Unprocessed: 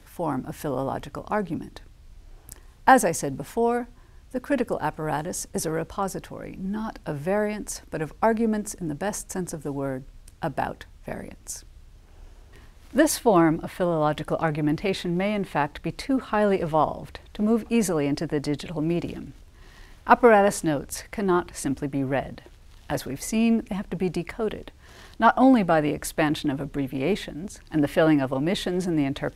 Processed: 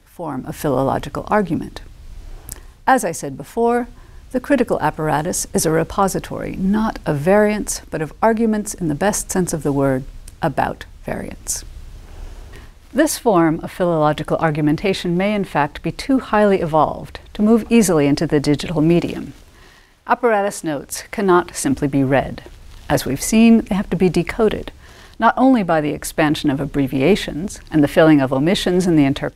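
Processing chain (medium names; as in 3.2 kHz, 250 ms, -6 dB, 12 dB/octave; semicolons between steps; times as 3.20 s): 18.99–21.72 s: bass shelf 150 Hz -9 dB; level rider gain up to 14.5 dB; trim -1 dB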